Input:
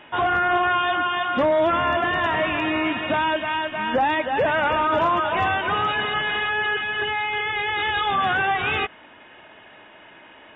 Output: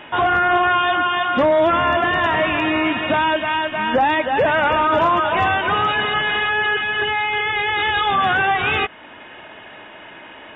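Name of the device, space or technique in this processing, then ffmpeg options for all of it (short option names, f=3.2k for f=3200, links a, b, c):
parallel compression: -filter_complex "[0:a]asplit=2[a][b];[b]acompressor=threshold=-36dB:ratio=6,volume=-3dB[c];[a][c]amix=inputs=2:normalize=0,volume=3dB"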